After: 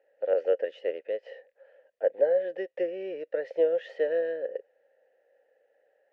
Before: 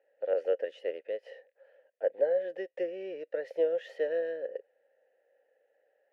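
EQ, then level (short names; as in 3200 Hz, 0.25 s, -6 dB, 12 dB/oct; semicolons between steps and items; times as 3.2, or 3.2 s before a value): air absorption 98 m; +4.0 dB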